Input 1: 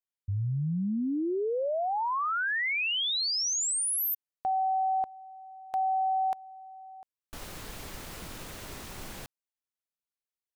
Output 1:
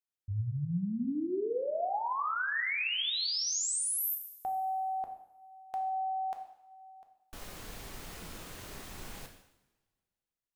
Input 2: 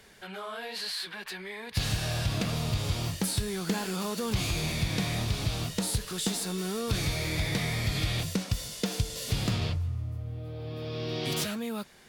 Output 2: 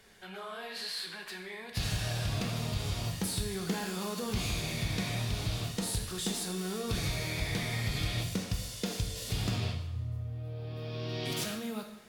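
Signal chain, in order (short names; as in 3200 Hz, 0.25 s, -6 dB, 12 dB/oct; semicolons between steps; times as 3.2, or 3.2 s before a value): two-slope reverb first 0.79 s, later 2 s, from -21 dB, DRR 3.5 dB; gain -5 dB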